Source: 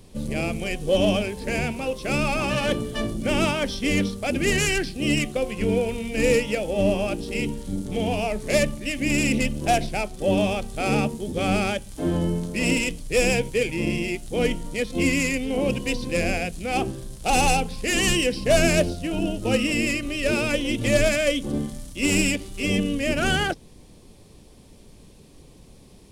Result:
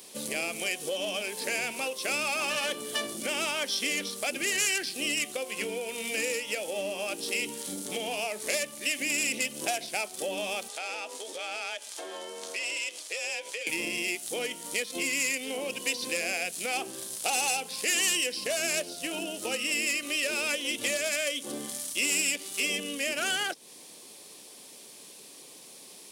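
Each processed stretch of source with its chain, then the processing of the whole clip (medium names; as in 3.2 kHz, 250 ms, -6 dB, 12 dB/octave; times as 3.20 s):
10.68–13.67 s: three-band isolator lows -23 dB, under 380 Hz, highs -14 dB, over 7.8 kHz + compression 8:1, threshold -36 dBFS + frequency shift +35 Hz
whole clip: high-pass 290 Hz 12 dB/octave; compression 5:1, threshold -32 dBFS; tilt EQ +3 dB/octave; trim +2.5 dB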